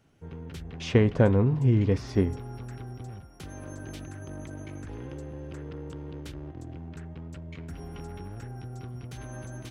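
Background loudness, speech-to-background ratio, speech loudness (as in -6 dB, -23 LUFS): -41.0 LUFS, 17.0 dB, -24.0 LUFS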